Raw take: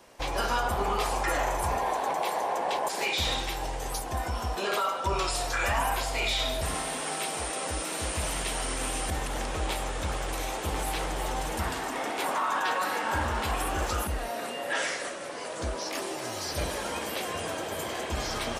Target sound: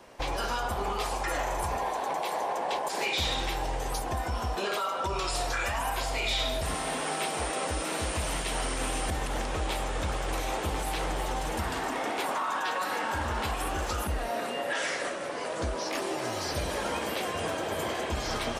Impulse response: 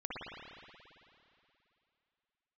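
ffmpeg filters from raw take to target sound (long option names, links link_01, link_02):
-filter_complex "[0:a]highshelf=frequency=4300:gain=-7.5,acrossover=split=3200[link_01][link_02];[link_01]alimiter=level_in=2dB:limit=-24dB:level=0:latency=1:release=148,volume=-2dB[link_03];[link_03][link_02]amix=inputs=2:normalize=0,volume=3.5dB"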